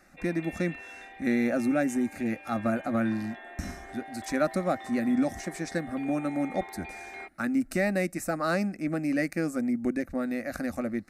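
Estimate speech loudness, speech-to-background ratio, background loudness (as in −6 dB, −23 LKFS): −30.0 LKFS, 14.0 dB, −44.0 LKFS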